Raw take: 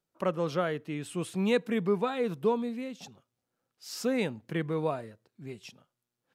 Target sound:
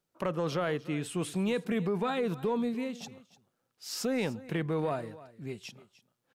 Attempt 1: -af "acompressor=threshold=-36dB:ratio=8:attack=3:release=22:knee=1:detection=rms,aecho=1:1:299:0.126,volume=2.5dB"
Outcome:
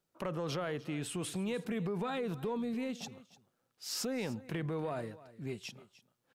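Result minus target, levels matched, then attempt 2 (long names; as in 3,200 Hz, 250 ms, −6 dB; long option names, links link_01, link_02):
downward compressor: peak gain reduction +6 dB
-af "acompressor=threshold=-29dB:ratio=8:attack=3:release=22:knee=1:detection=rms,aecho=1:1:299:0.126,volume=2.5dB"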